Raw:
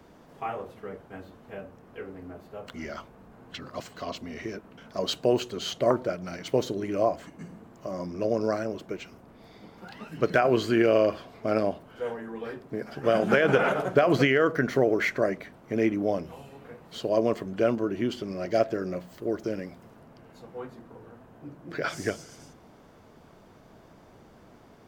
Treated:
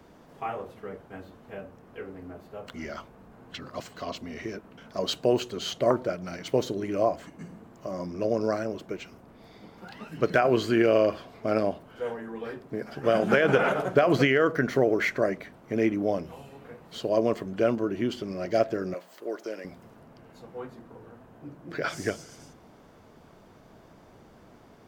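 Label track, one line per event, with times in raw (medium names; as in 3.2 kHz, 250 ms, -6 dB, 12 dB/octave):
18.940000	19.650000	high-pass 470 Hz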